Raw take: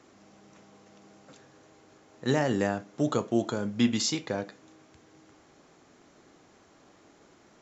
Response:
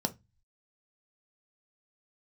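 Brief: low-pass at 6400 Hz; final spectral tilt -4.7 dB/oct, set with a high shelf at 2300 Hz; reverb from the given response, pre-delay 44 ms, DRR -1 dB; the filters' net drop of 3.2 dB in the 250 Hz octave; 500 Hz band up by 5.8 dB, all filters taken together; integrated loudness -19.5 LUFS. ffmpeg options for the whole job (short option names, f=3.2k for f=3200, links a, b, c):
-filter_complex "[0:a]lowpass=6.4k,equalizer=f=250:t=o:g=-7,equalizer=f=500:t=o:g=8.5,highshelf=f=2.3k:g=8.5,asplit=2[a][b];[1:a]atrim=start_sample=2205,adelay=44[c];[b][c]afir=irnorm=-1:irlink=0,volume=-3.5dB[d];[a][d]amix=inputs=2:normalize=0,volume=0.5dB"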